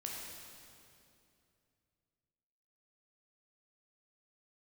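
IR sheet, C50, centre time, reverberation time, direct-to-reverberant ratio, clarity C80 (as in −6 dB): −0.5 dB, 119 ms, 2.6 s, −2.5 dB, 1.0 dB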